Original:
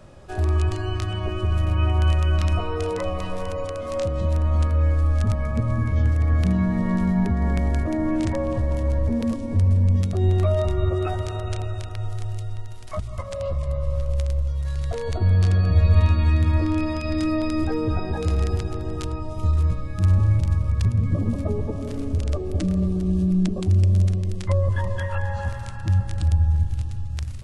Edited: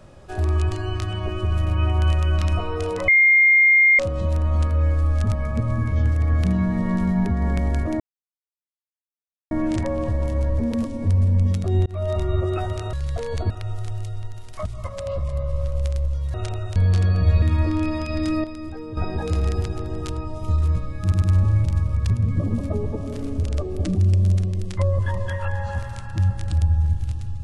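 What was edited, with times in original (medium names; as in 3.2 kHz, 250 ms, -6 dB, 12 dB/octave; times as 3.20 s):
3.08–3.99 s: bleep 2.12 kHz -11 dBFS
8.00 s: insert silence 1.51 s
10.35–10.78 s: fade in equal-power
11.42–11.84 s: swap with 14.68–15.25 s
15.91–16.37 s: delete
17.39–17.92 s: gain -10 dB
19.97 s: stutter 0.10 s, 3 plays
22.70–23.65 s: delete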